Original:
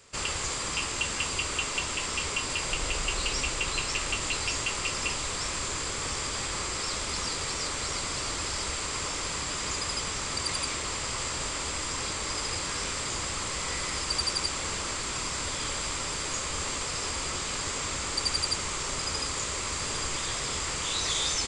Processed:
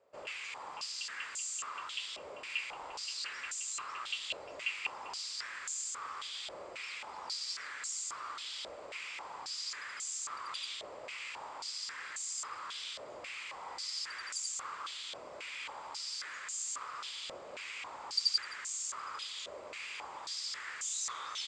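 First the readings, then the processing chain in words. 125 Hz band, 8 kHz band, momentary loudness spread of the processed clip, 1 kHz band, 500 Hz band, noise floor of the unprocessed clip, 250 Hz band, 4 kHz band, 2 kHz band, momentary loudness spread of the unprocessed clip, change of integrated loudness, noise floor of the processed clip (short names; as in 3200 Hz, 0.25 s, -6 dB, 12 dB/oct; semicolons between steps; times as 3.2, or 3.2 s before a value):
under -30 dB, -10.5 dB, 7 LU, -9.0 dB, -12.5 dB, -33 dBFS, -23.0 dB, -8.5 dB, -9.0 dB, 3 LU, -9.5 dB, -48 dBFS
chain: stepped band-pass 3.7 Hz 600–6900 Hz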